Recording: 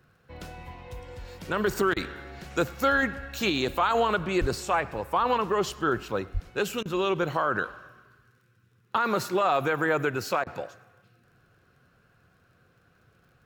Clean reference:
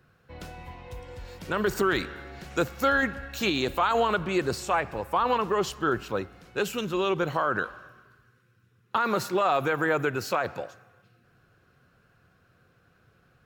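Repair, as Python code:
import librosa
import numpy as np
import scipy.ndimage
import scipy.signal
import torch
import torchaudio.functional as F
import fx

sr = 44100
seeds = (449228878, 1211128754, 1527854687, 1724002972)

y = fx.fix_declick_ar(x, sr, threshold=6.5)
y = fx.highpass(y, sr, hz=140.0, slope=24, at=(4.4, 4.52), fade=0.02)
y = fx.highpass(y, sr, hz=140.0, slope=24, at=(6.33, 6.45), fade=0.02)
y = fx.fix_interpolate(y, sr, at_s=(1.94, 6.83, 10.44), length_ms=24.0)
y = fx.fix_echo_inverse(y, sr, delay_ms=102, level_db=-24.0)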